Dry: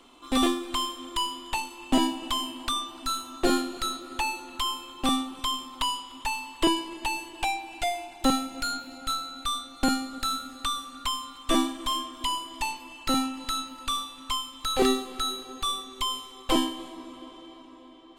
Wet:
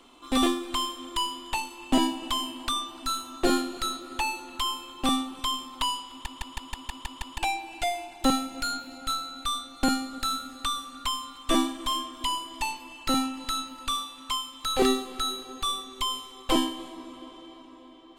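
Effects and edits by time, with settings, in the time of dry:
6.1 stutter in place 0.16 s, 8 plays
13.95–14.66 low shelf 140 Hz -7 dB

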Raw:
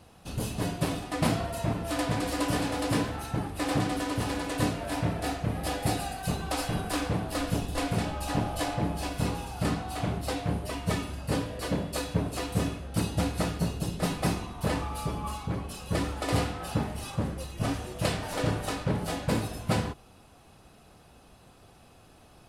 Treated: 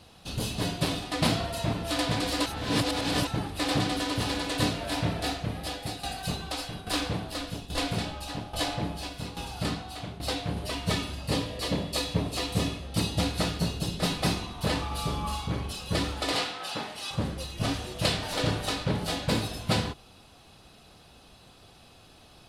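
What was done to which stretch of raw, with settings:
2.46–3.27 reverse
5.2–10.57 tremolo saw down 1.2 Hz, depth 75%
11.14–13.24 notch 1500 Hz, Q 8.7
14.87–15.72 flutter echo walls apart 7.3 m, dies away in 0.35 s
16.32–17.11 weighting filter A
whole clip: bell 3900 Hz +9.5 dB 1.1 oct

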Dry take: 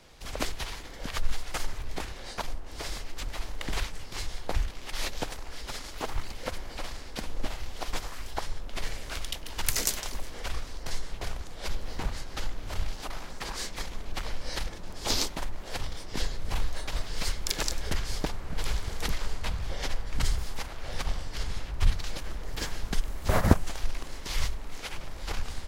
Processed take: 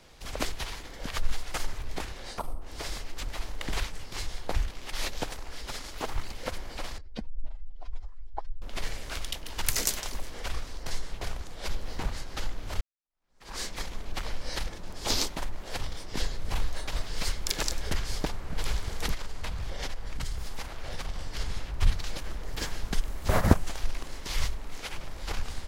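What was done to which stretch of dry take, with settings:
2.39–2.62 spectral gain 1400–7900 Hz -14 dB
6.98–8.62 spectral contrast raised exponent 2
12.81–13.55 fade in exponential
19.14–21.19 compressor 4:1, threshold -28 dBFS

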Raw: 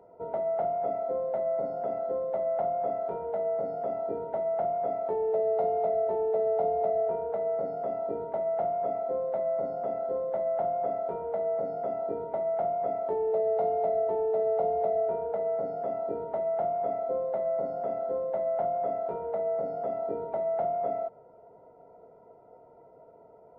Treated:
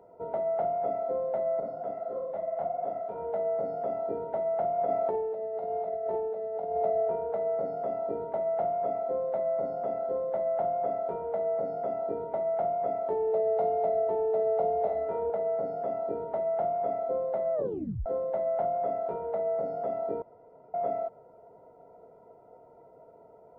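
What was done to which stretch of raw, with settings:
1.6–3.18 detuned doubles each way 57 cents
4.78–6.77 negative-ratio compressor -30 dBFS, ratio -0.5
14.82–15.3 flutter echo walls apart 4.8 m, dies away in 0.42 s
17.54 tape stop 0.52 s
20.22–20.74 room tone

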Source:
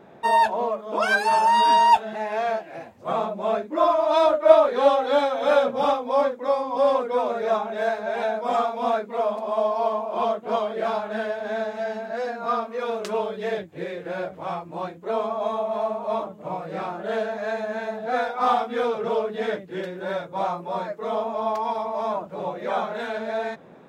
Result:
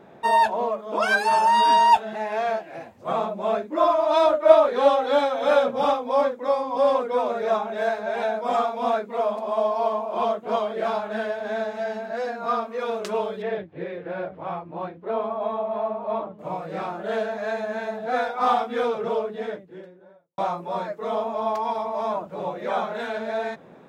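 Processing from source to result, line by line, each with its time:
13.42–16.39 air absorption 290 m
18.82–20.38 studio fade out

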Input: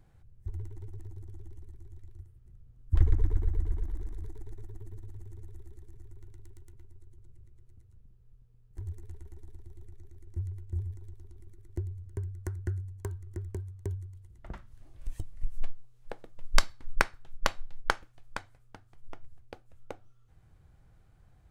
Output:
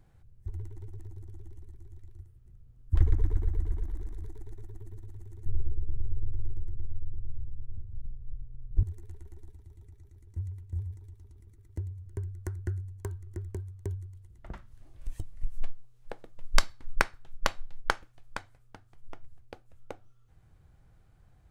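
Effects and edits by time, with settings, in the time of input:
5.46–8.83 tilt -4 dB/oct
9.5–12.06 notch comb 360 Hz

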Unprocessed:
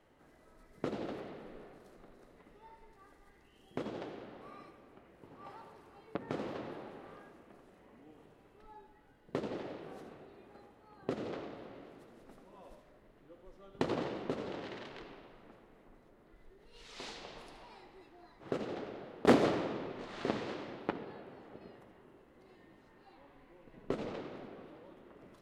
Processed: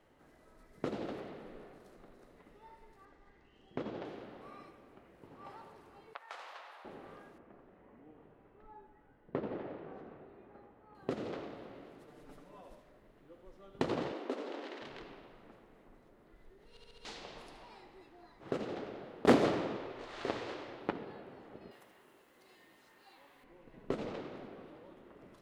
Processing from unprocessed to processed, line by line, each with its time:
3.05–4.05 air absorption 110 m
6.13–6.85 HPF 820 Hz 24 dB/oct
7.38–10.95 LPF 2000 Hz
12.07–12.61 comb 6.8 ms, depth 80%
14.12–14.82 Chebyshev high-pass 260 Hz, order 4
16.7 stutter in place 0.07 s, 5 plays
19.76–20.82 bell 190 Hz -13 dB
21.71–23.44 tilt +3.5 dB/oct

